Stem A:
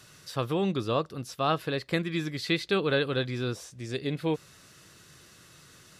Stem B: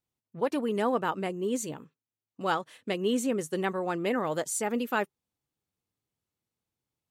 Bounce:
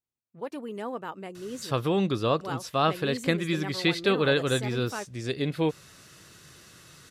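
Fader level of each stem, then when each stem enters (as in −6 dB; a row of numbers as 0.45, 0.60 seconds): +2.5, −7.5 decibels; 1.35, 0.00 seconds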